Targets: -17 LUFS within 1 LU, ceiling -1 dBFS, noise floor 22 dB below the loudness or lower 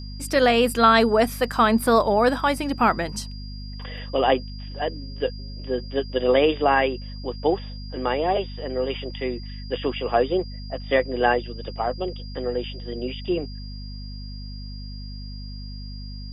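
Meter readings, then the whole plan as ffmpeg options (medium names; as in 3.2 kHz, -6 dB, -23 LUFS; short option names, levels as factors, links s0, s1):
hum 50 Hz; highest harmonic 250 Hz; hum level -33 dBFS; steady tone 4.8 kHz; tone level -43 dBFS; loudness -23.0 LUFS; peak level -5.0 dBFS; loudness target -17.0 LUFS
-> -af "bandreject=f=50:t=h:w=4,bandreject=f=100:t=h:w=4,bandreject=f=150:t=h:w=4,bandreject=f=200:t=h:w=4,bandreject=f=250:t=h:w=4"
-af "bandreject=f=4800:w=30"
-af "volume=2,alimiter=limit=0.891:level=0:latency=1"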